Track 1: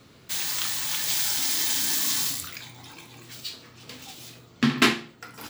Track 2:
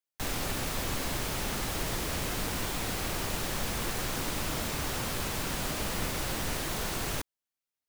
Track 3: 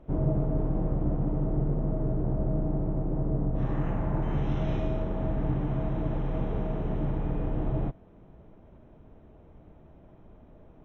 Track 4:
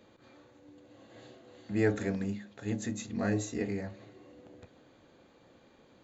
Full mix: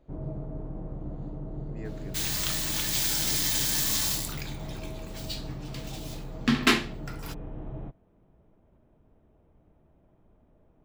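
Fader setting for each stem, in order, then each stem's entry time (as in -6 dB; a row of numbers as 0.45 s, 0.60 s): -2.0 dB, mute, -9.5 dB, -15.5 dB; 1.85 s, mute, 0.00 s, 0.00 s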